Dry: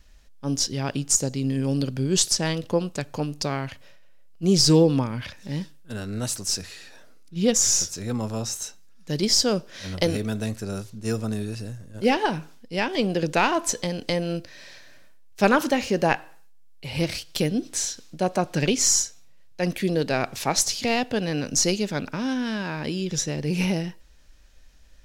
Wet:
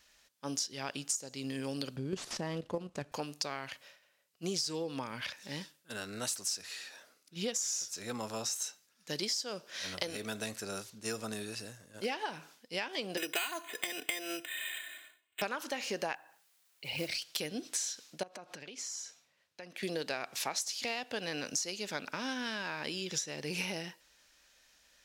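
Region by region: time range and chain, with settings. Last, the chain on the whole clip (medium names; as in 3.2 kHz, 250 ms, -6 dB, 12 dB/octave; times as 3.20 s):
1.96–3.12 s: CVSD coder 64 kbps + level held to a coarse grid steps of 10 dB + tilt EQ -3.5 dB/octave
13.17–15.42 s: frequency weighting D + careless resampling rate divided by 8×, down filtered, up hold + comb 2.8 ms, depth 89%
16.15–17.22 s: resonances exaggerated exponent 1.5 + modulation noise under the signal 24 dB
18.23–19.83 s: low-pass 3.8 kHz 6 dB/octave + compression 20:1, threshold -36 dBFS
whole clip: high-pass 1 kHz 6 dB/octave; compression 12:1, threshold -32 dBFS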